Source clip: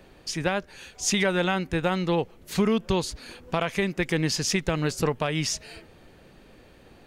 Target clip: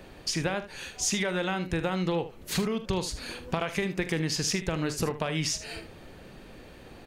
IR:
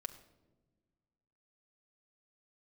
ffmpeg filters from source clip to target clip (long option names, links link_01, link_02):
-af "acompressor=threshold=-30dB:ratio=6,aecho=1:1:43|76:0.211|0.211,volume=4dB"